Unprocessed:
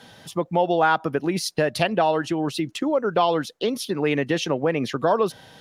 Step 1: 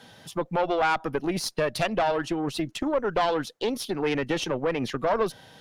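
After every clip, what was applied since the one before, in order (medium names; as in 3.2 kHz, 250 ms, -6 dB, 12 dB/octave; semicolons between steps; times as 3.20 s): valve stage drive 16 dB, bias 0.6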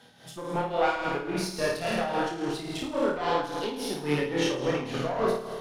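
flutter echo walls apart 9.2 m, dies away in 1.4 s; chorus voices 2, 0.56 Hz, delay 26 ms, depth 3.9 ms; tremolo 3.6 Hz, depth 61%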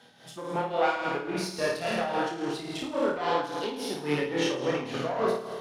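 high-pass 160 Hz 6 dB/octave; treble shelf 11 kHz -6.5 dB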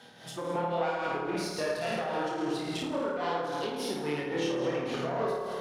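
compression 3:1, threshold -35 dBFS, peak gain reduction 11.5 dB; bucket-brigade echo 83 ms, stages 1024, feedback 62%, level -5 dB; trim +3 dB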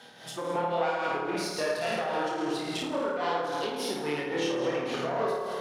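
bass shelf 230 Hz -7.5 dB; trim +3 dB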